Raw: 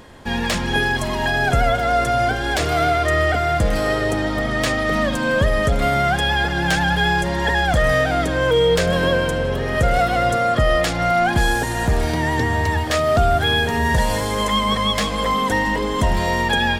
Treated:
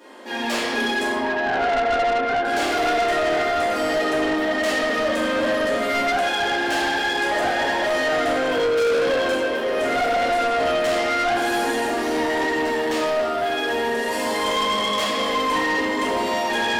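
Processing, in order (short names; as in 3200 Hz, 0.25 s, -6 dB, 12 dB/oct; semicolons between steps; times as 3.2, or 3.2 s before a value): 1.04–2.45 LPF 2100 Hz 24 dB/oct; 7.31–7.82 reverse; 12.82–14.11 compressor, threshold -18 dBFS, peak gain reduction 7 dB; elliptic high-pass 240 Hz; reverb RT60 1.8 s, pre-delay 3 ms, DRR -11.5 dB; soft clip -9.5 dBFS, distortion -9 dB; gain -8 dB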